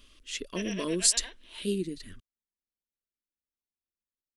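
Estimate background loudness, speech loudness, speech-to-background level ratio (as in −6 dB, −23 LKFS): −42.0 LKFS, −29.5 LKFS, 12.5 dB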